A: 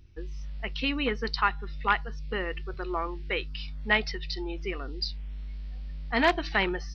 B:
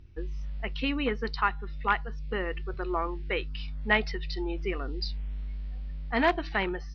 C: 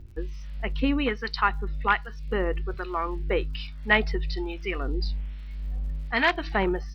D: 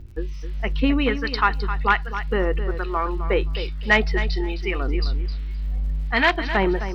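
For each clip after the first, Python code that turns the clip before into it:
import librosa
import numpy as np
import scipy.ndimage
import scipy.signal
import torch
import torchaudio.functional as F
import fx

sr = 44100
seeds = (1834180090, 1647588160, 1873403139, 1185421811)

y1 = fx.lowpass(x, sr, hz=2300.0, slope=6)
y1 = fx.rider(y1, sr, range_db=4, speed_s=2.0)
y2 = fx.harmonic_tremolo(y1, sr, hz=1.2, depth_pct=70, crossover_hz=1200.0)
y2 = fx.dmg_crackle(y2, sr, seeds[0], per_s=76.0, level_db=-55.0)
y2 = y2 * 10.0 ** (7.0 / 20.0)
y3 = 10.0 ** (-8.0 / 20.0) * np.tanh(y2 / 10.0 ** (-8.0 / 20.0))
y3 = fx.echo_feedback(y3, sr, ms=261, feedback_pct=16, wet_db=-11.0)
y3 = y3 * 10.0 ** (4.5 / 20.0)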